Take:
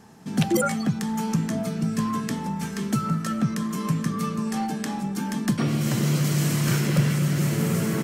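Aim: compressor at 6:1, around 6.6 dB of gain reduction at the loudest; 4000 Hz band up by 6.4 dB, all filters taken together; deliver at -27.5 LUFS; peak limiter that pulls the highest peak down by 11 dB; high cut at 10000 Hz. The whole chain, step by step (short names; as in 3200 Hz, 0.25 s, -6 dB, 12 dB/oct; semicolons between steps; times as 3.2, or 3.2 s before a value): LPF 10000 Hz; bell 4000 Hz +8.5 dB; compressor 6:1, threshold -24 dBFS; gain +3 dB; limiter -18.5 dBFS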